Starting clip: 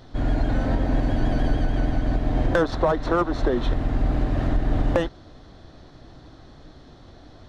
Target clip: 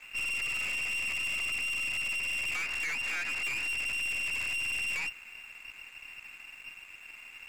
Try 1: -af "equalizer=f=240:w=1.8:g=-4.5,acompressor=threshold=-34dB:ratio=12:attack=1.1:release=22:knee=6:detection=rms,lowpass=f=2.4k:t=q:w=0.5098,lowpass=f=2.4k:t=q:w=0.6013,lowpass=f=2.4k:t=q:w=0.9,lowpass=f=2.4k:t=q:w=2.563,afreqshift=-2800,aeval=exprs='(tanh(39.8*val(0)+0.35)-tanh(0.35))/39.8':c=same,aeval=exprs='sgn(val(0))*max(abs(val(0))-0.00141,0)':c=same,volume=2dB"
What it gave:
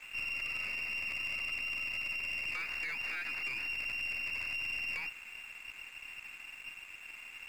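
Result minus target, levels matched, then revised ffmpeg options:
compressor: peak gain reduction +8 dB
-af "equalizer=f=240:w=1.8:g=-4.5,acompressor=threshold=-25.5dB:ratio=12:attack=1.1:release=22:knee=6:detection=rms,lowpass=f=2.4k:t=q:w=0.5098,lowpass=f=2.4k:t=q:w=0.6013,lowpass=f=2.4k:t=q:w=0.9,lowpass=f=2.4k:t=q:w=2.563,afreqshift=-2800,aeval=exprs='(tanh(39.8*val(0)+0.35)-tanh(0.35))/39.8':c=same,aeval=exprs='sgn(val(0))*max(abs(val(0))-0.00141,0)':c=same,volume=2dB"

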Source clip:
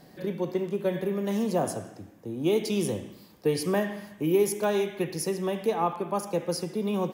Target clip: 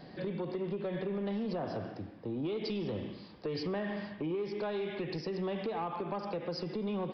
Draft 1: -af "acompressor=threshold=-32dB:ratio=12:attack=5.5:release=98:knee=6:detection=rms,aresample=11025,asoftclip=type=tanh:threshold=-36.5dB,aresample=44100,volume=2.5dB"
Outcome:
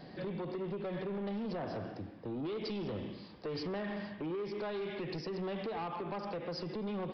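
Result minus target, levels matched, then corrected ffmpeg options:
soft clip: distortion +8 dB
-af "acompressor=threshold=-32dB:ratio=12:attack=5.5:release=98:knee=6:detection=rms,aresample=11025,asoftclip=type=tanh:threshold=-30dB,aresample=44100,volume=2.5dB"

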